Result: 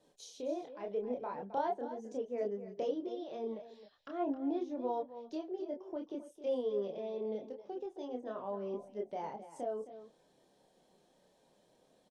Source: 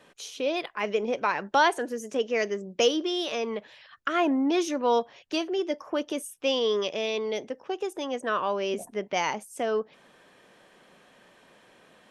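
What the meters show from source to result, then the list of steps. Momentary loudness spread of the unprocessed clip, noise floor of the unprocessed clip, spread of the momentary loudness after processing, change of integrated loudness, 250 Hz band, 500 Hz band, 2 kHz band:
9 LU, -58 dBFS, 8 LU, -11.5 dB, -10.0 dB, -10.0 dB, -26.5 dB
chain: low-pass that closes with the level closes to 1.7 kHz, closed at -26 dBFS; high-order bell 1.8 kHz -13 dB; delay 265 ms -13 dB; chorus voices 6, 0.3 Hz, delay 28 ms, depth 4 ms; trim -7 dB

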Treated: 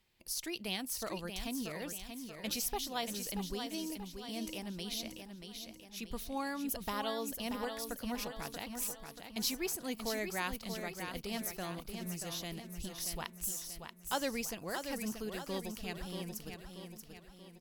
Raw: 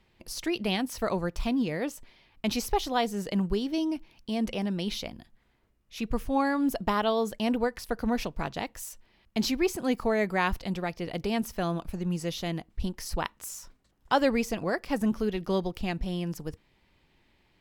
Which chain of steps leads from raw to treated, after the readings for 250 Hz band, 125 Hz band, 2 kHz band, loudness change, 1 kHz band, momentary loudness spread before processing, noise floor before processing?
-12.0 dB, -12.0 dB, -8.0 dB, -9.0 dB, -10.5 dB, 9 LU, -67 dBFS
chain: pre-emphasis filter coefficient 0.8; feedback delay 633 ms, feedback 48%, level -7 dB; trim +1 dB

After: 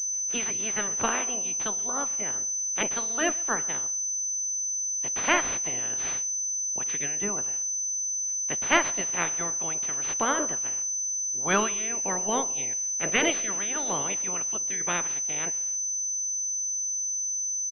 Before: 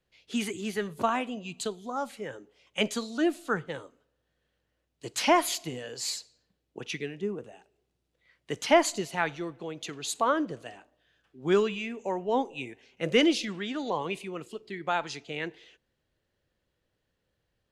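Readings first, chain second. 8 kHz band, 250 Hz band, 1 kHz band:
+19.5 dB, -5.0 dB, -0.5 dB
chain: spectral peaks clipped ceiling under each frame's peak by 23 dB; speakerphone echo 130 ms, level -23 dB; class-D stage that switches slowly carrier 6.1 kHz

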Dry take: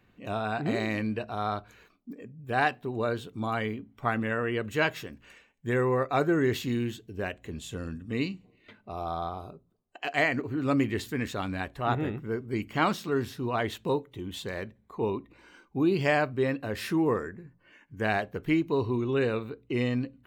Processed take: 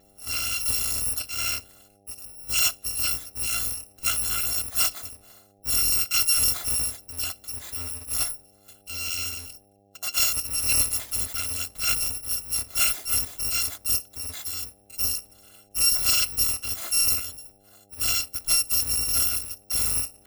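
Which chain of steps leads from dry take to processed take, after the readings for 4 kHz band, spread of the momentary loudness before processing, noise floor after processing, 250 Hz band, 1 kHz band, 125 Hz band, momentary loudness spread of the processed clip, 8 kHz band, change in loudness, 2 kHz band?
+14.5 dB, 12 LU, -59 dBFS, -19.0 dB, -9.5 dB, -8.0 dB, 12 LU, +27.5 dB, +6.5 dB, -2.0 dB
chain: bit-reversed sample order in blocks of 256 samples; mains buzz 100 Hz, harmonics 8, -64 dBFS -1 dB/octave; trim +3 dB

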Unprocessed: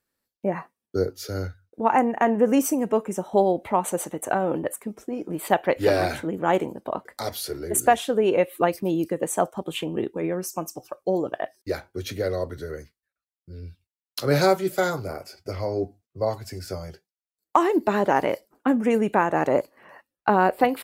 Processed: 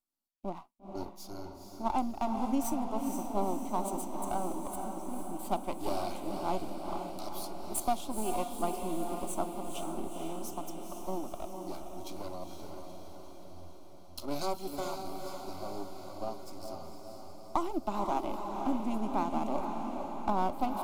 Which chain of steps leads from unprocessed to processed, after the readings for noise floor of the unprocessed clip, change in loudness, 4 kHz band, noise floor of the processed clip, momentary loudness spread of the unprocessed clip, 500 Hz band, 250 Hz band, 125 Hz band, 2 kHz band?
under -85 dBFS, -12.0 dB, -11.0 dB, -48 dBFS, 14 LU, -15.0 dB, -10.0 dB, -14.0 dB, -20.5 dB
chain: partial rectifier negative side -12 dB; static phaser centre 470 Hz, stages 6; echo that smears into a reverb 476 ms, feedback 64%, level -5 dB; trim -7.5 dB

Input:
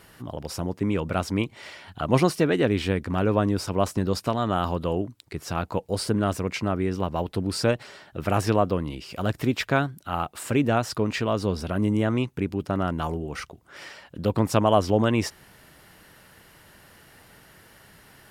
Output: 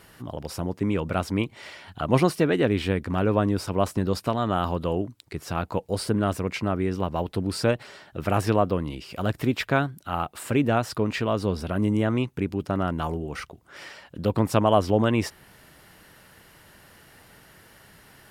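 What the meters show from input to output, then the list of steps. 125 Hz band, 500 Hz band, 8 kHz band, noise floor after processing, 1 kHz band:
0.0 dB, 0.0 dB, -2.5 dB, -54 dBFS, 0.0 dB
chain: dynamic bell 6.2 kHz, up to -4 dB, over -48 dBFS, Q 1.4

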